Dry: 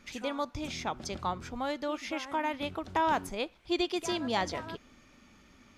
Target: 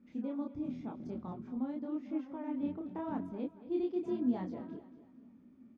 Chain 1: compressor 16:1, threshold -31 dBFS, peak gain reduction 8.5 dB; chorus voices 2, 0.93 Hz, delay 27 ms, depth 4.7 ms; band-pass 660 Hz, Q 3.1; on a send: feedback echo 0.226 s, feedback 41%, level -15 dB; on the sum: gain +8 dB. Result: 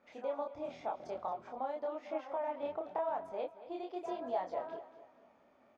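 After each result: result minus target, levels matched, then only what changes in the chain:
250 Hz band -12.0 dB; compressor: peak gain reduction +8.5 dB
change: band-pass 240 Hz, Q 3.1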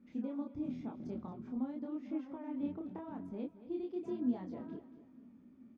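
compressor: peak gain reduction +8.5 dB
remove: compressor 16:1, threshold -31 dBFS, peak gain reduction 8.5 dB

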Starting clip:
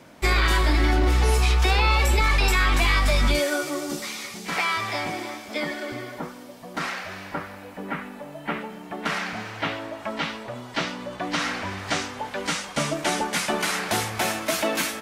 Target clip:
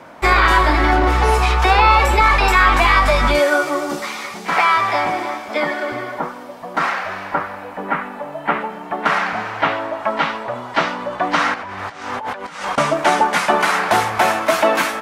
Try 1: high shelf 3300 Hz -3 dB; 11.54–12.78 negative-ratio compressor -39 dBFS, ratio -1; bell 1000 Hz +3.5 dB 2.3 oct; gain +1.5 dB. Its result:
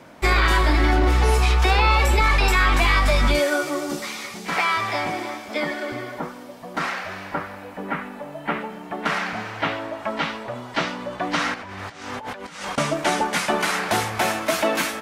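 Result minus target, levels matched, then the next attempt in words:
1000 Hz band -3.0 dB
high shelf 3300 Hz -3 dB; 11.54–12.78 negative-ratio compressor -39 dBFS, ratio -1; bell 1000 Hz +12.5 dB 2.3 oct; gain +1.5 dB

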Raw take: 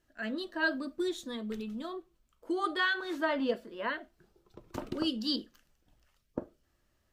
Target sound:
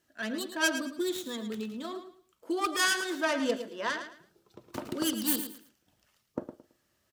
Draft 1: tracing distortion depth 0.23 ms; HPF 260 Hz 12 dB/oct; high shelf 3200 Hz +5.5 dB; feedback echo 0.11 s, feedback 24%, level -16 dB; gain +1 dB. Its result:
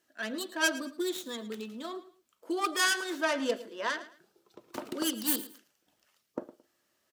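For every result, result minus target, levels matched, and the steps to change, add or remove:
125 Hz band -6.5 dB; echo-to-direct -6 dB
change: HPF 110 Hz 12 dB/oct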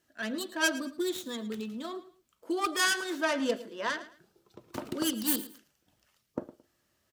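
echo-to-direct -6 dB
change: feedback echo 0.11 s, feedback 24%, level -10 dB

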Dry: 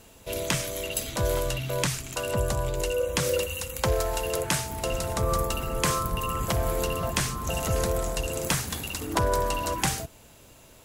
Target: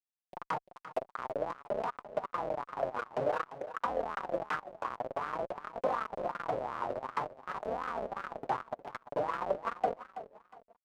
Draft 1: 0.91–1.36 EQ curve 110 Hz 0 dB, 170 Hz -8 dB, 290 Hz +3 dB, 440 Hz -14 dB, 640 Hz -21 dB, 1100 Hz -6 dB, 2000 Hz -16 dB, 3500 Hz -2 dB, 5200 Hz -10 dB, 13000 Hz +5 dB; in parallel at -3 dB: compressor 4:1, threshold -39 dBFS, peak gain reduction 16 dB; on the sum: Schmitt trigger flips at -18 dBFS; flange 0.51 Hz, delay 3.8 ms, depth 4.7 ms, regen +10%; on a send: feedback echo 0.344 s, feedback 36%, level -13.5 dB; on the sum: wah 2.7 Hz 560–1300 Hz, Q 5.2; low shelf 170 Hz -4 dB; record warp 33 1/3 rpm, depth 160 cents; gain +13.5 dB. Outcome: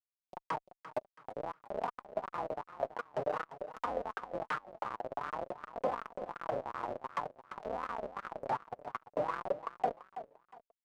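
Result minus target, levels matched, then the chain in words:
compressor: peak gain reduction +6 dB
0.91–1.36 EQ curve 110 Hz 0 dB, 170 Hz -8 dB, 290 Hz +3 dB, 440 Hz -14 dB, 640 Hz -21 dB, 1100 Hz -6 dB, 2000 Hz -16 dB, 3500 Hz -2 dB, 5200 Hz -10 dB, 13000 Hz +5 dB; in parallel at -3 dB: compressor 4:1, threshold -31 dBFS, peak gain reduction 10 dB; on the sum: Schmitt trigger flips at -18 dBFS; flange 0.51 Hz, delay 3.8 ms, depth 4.7 ms, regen +10%; on a send: feedback echo 0.344 s, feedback 36%, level -13.5 dB; on the sum: wah 2.7 Hz 560–1300 Hz, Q 5.2; low shelf 170 Hz -4 dB; record warp 33 1/3 rpm, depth 160 cents; gain +13.5 dB

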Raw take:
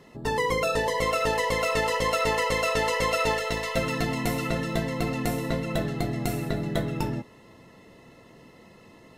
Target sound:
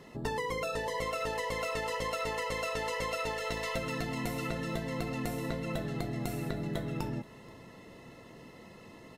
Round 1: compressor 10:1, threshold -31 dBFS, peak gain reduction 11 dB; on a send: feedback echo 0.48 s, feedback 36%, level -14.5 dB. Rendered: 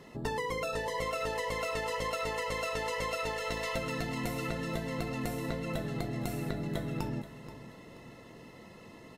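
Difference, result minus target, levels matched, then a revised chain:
echo-to-direct +9.5 dB
compressor 10:1, threshold -31 dBFS, peak gain reduction 11 dB; on a send: feedback echo 0.48 s, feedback 36%, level -24 dB

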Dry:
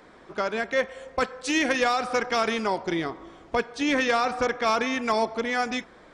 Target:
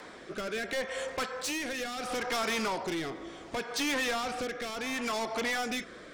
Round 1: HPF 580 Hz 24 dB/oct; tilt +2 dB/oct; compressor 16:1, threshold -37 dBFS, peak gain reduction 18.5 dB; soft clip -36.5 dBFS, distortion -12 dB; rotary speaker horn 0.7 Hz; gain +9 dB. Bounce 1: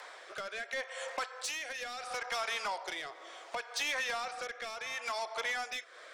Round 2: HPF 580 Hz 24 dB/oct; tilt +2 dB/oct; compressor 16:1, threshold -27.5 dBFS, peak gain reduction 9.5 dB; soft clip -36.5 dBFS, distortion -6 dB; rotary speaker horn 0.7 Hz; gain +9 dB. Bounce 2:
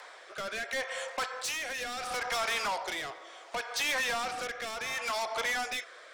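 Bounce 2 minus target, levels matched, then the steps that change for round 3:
500 Hz band -3.5 dB
remove: HPF 580 Hz 24 dB/oct

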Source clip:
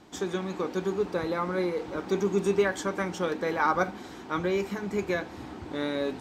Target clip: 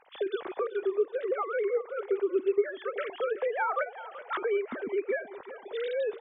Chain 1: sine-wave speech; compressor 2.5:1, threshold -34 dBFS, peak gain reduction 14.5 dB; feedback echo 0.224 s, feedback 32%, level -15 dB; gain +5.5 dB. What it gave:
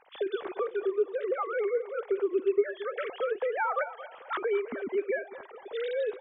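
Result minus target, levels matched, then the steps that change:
echo 0.156 s early
change: feedback echo 0.38 s, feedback 32%, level -15 dB

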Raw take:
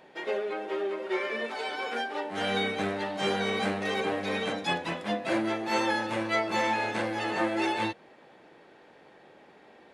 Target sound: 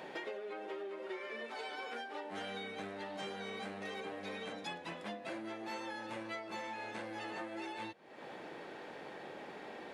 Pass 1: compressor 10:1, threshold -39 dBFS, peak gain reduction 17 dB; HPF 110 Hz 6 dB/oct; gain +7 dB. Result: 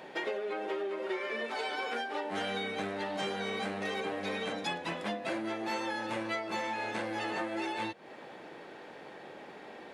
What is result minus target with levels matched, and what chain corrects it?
compressor: peak gain reduction -8 dB
compressor 10:1, threshold -48 dBFS, peak gain reduction 25 dB; HPF 110 Hz 6 dB/oct; gain +7 dB

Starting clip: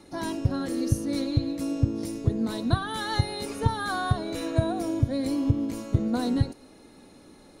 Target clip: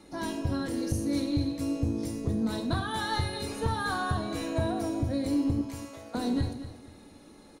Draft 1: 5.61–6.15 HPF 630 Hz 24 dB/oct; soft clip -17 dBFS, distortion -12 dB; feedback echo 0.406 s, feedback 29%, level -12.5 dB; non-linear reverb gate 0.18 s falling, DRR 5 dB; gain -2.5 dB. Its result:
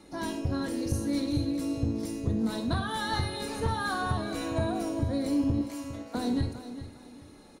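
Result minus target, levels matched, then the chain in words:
echo 0.169 s late
5.61–6.15 HPF 630 Hz 24 dB/oct; soft clip -17 dBFS, distortion -12 dB; feedback echo 0.237 s, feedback 29%, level -12.5 dB; non-linear reverb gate 0.18 s falling, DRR 5 dB; gain -2.5 dB

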